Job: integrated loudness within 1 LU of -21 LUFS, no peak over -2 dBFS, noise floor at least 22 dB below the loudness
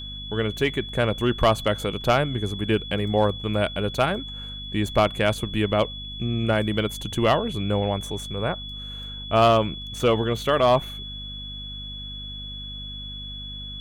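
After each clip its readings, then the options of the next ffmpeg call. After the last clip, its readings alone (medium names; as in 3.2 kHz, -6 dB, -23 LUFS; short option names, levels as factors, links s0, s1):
hum 50 Hz; highest harmonic 250 Hz; hum level -36 dBFS; steady tone 3.4 kHz; tone level -35 dBFS; loudness -24.5 LUFS; peak level -9.5 dBFS; loudness target -21.0 LUFS
-> -af "bandreject=f=50:t=h:w=6,bandreject=f=100:t=h:w=6,bandreject=f=150:t=h:w=6,bandreject=f=200:t=h:w=6,bandreject=f=250:t=h:w=6"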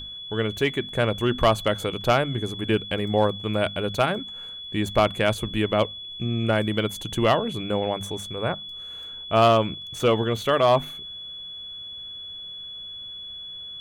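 hum not found; steady tone 3.4 kHz; tone level -35 dBFS
-> -af "bandreject=f=3400:w=30"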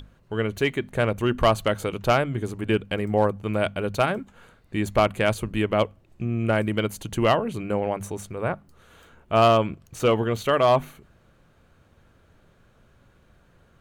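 steady tone not found; loudness -24.0 LUFS; peak level -9.0 dBFS; loudness target -21.0 LUFS
-> -af "volume=1.41"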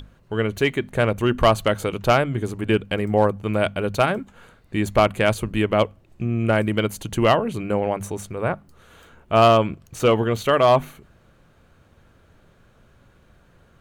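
loudness -21.5 LUFS; peak level -6.0 dBFS; noise floor -56 dBFS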